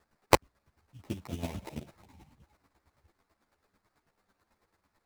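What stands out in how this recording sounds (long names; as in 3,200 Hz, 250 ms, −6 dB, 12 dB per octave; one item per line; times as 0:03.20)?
a quantiser's noise floor 12 bits, dither triangular
chopped level 9.1 Hz, depth 65%, duty 25%
aliases and images of a low sample rate 3,100 Hz, jitter 20%
a shimmering, thickened sound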